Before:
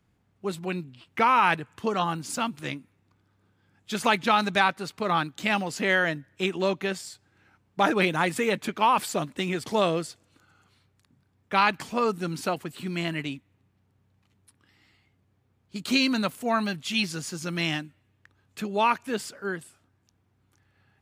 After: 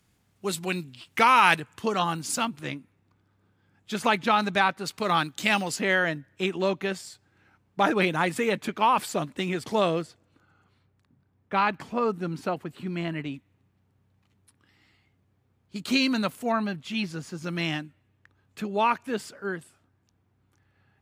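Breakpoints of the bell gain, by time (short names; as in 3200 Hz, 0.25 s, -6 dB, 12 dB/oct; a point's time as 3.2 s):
bell 11000 Hz 2.9 oct
+12.5 dB
from 1.6 s +5 dB
from 2.45 s -3.5 dB
from 4.86 s +7 dB
from 5.76 s -2.5 dB
from 10.02 s -12.5 dB
from 13.34 s -2 dB
from 16.52 s -12 dB
from 17.44 s -5 dB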